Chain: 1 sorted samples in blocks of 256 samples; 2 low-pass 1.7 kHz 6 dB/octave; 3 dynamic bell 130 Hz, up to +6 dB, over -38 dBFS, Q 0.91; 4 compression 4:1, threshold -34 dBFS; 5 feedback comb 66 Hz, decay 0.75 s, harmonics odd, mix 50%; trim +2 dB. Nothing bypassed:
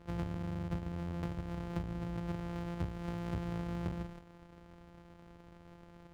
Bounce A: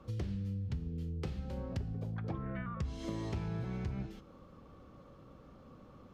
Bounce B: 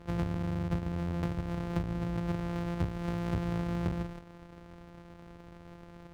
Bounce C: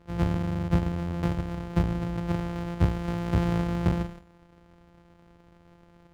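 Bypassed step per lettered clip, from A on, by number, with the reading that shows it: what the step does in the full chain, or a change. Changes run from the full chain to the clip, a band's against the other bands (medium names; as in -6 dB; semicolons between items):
1, 125 Hz band +2.5 dB; 5, loudness change +5.5 LU; 4, mean gain reduction 8.0 dB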